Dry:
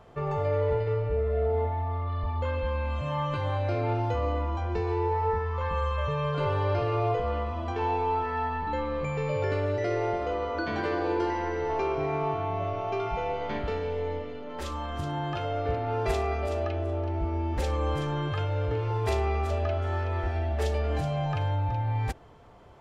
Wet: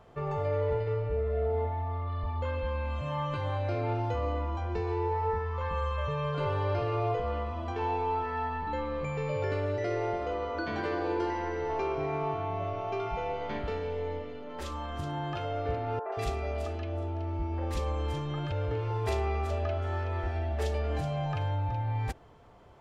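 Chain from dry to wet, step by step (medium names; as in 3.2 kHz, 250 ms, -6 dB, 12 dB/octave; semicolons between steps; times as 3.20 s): 15.99–18.52 s: three bands offset in time mids, highs, lows 130/180 ms, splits 450/1500 Hz; trim -3 dB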